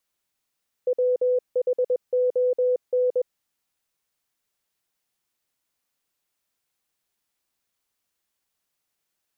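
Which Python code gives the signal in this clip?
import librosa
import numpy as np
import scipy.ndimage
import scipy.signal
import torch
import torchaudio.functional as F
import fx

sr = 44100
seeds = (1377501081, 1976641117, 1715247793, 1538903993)

y = fx.morse(sr, text='WHON', wpm=21, hz=500.0, level_db=-18.0)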